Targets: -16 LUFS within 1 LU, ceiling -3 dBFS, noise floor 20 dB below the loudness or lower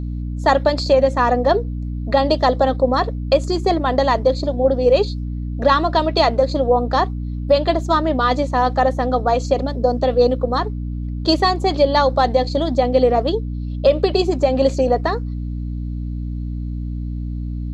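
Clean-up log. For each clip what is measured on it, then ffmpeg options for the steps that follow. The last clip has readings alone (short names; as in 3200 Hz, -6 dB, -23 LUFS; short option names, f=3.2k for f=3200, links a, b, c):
hum 60 Hz; harmonics up to 300 Hz; hum level -22 dBFS; loudness -18.5 LUFS; peak -2.0 dBFS; loudness target -16.0 LUFS
-> -af "bandreject=f=60:t=h:w=4,bandreject=f=120:t=h:w=4,bandreject=f=180:t=h:w=4,bandreject=f=240:t=h:w=4,bandreject=f=300:t=h:w=4"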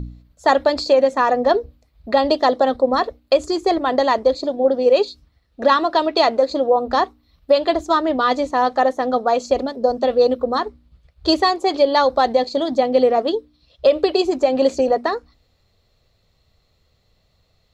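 hum none; loudness -18.0 LUFS; peak -3.0 dBFS; loudness target -16.0 LUFS
-> -af "volume=2dB,alimiter=limit=-3dB:level=0:latency=1"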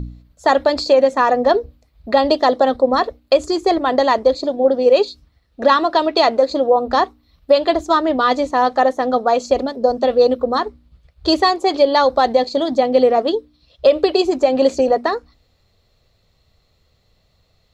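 loudness -16.5 LUFS; peak -3.0 dBFS; noise floor -61 dBFS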